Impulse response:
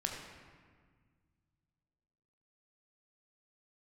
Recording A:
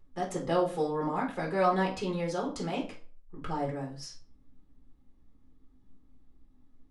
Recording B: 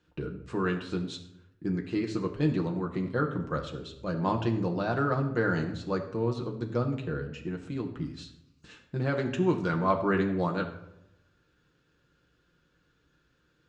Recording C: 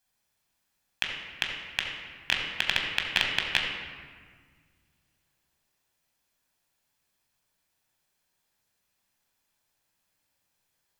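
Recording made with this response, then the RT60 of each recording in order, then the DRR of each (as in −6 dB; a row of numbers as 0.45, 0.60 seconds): C; 0.40, 0.85, 1.7 seconds; −3.5, 1.5, 0.5 decibels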